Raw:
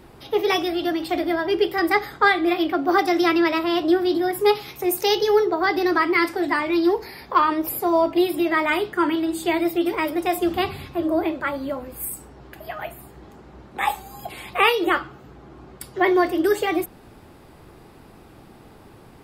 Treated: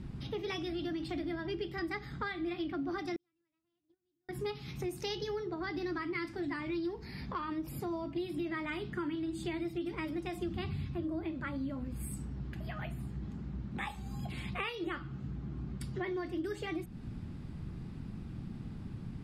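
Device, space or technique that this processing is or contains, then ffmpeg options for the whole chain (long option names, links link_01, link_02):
jukebox: -filter_complex "[0:a]lowpass=7000,lowshelf=frequency=290:width_type=q:width=1.5:gain=13,acompressor=threshold=-28dB:ratio=4,equalizer=frequency=790:width_type=o:width=1.3:gain=-5,asettb=1/sr,asplit=3[link_01][link_02][link_03];[link_01]atrim=end=3.164[link_04];[link_02]atrim=start=3.16:end=4.29,asetpts=PTS-STARTPTS,afade=type=in:duration=0.004:curve=qsin,afade=type=out:start_time=1.126:duration=0.004:curve=qsin,agate=range=-48dB:threshold=-22dB:ratio=16:detection=peak[link_05];[link_03]atrim=start=4.286[link_06];[link_04][link_05]acrossfade=duration=0.004:curve1=hsin:curve2=qsin[link_07];[link_07][link_06]acrossfade=duration=0.004:curve1=qsin:curve2=hsin,volume=-6.5dB"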